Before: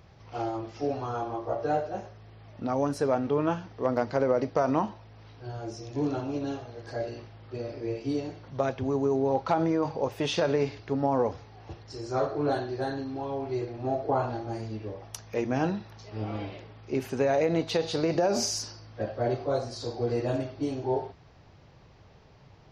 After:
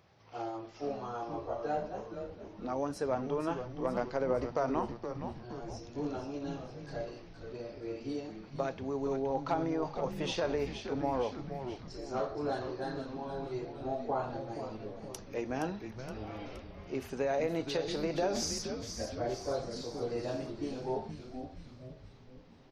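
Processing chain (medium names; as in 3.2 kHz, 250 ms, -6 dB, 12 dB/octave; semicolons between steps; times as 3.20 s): high-pass 230 Hz 6 dB/octave; frequency-shifting echo 470 ms, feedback 56%, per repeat -130 Hz, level -8 dB; trim -6 dB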